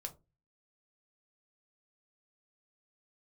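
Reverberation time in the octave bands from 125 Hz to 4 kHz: 0.55, 0.35, 0.30, 0.20, 0.15, 0.15 seconds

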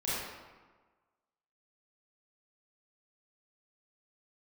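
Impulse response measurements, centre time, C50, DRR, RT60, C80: 109 ms, −4.0 dB, −10.5 dB, 1.4 s, −0.5 dB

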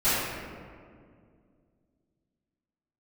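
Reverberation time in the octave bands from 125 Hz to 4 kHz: 2.9, 2.9, 2.4, 1.9, 1.6, 1.1 seconds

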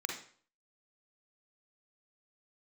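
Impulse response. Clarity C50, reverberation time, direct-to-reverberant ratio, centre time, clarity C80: 3.5 dB, 0.50 s, 1.0 dB, 30 ms, 10.0 dB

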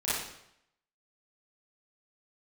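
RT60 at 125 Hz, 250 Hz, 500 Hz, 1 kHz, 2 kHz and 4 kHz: 0.75, 0.75, 0.75, 0.75, 0.75, 0.70 seconds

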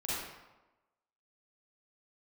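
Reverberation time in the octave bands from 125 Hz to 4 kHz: 0.95, 1.0, 1.1, 1.1, 0.85, 0.70 seconds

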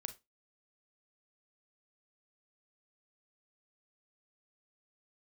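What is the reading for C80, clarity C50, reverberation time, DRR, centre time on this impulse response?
24.5 dB, 14.5 dB, 0.20 s, 9.0 dB, 6 ms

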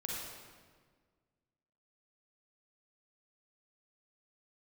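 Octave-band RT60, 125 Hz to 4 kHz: 2.0, 2.0, 1.7, 1.5, 1.4, 1.2 seconds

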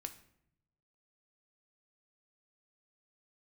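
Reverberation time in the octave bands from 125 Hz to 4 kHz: 1.3, 1.0, 0.80, 0.65, 0.60, 0.50 seconds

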